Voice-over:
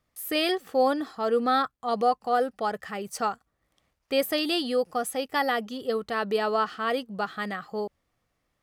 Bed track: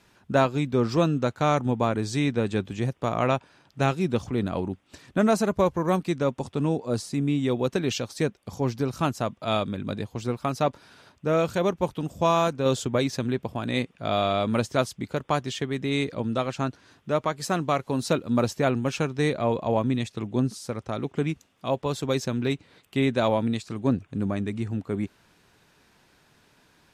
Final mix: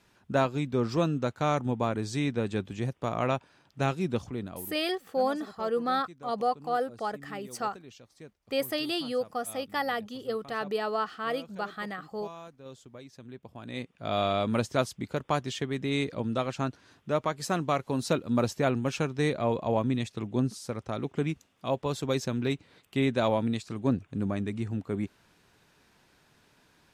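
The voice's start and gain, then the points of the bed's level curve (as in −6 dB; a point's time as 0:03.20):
4.40 s, −4.5 dB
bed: 0:04.18 −4.5 dB
0:05.00 −23 dB
0:13.05 −23 dB
0:14.21 −3 dB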